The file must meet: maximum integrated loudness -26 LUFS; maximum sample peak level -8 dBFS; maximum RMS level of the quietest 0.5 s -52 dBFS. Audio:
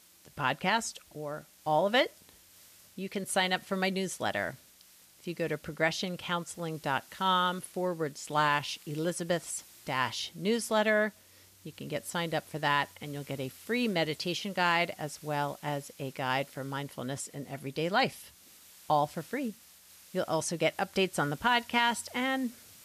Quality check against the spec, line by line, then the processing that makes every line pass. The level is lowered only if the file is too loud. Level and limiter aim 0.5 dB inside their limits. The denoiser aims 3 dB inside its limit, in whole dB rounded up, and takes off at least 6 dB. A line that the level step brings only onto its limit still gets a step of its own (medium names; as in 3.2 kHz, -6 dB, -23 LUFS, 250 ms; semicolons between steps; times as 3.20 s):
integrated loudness -31.5 LUFS: pass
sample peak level -13.5 dBFS: pass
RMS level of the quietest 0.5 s -59 dBFS: pass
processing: none needed